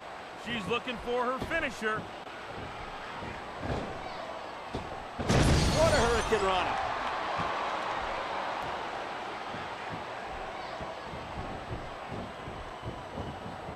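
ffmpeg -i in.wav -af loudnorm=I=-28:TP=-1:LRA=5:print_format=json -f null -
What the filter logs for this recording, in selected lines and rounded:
"input_i" : "-33.6",
"input_tp" : "-12.2",
"input_lra" : "11.2",
"input_thresh" : "-43.6",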